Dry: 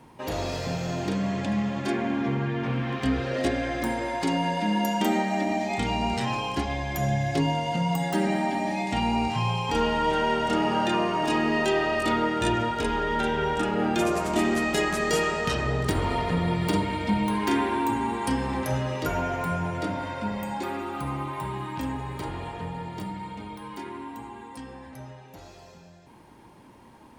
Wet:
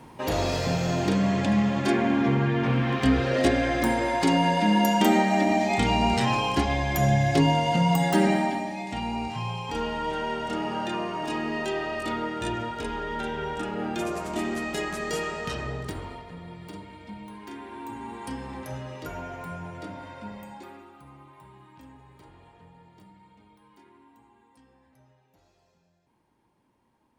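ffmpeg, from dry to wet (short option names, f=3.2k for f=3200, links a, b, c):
-af "volume=11.5dB,afade=t=out:st=8.25:d=0.45:silence=0.334965,afade=t=out:st=15.62:d=0.62:silence=0.281838,afade=t=in:st=17.6:d=0.6:silence=0.421697,afade=t=out:st=20.3:d=0.67:silence=0.334965"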